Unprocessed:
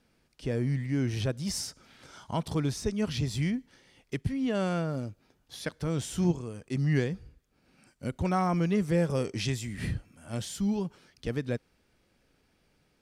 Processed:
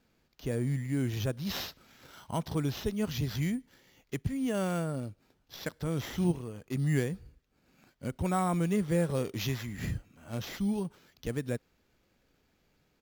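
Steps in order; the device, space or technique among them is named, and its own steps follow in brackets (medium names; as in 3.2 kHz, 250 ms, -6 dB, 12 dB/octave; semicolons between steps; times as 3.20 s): crushed at another speed (playback speed 0.8×; sample-and-hold 6×; playback speed 1.25×); trim -2 dB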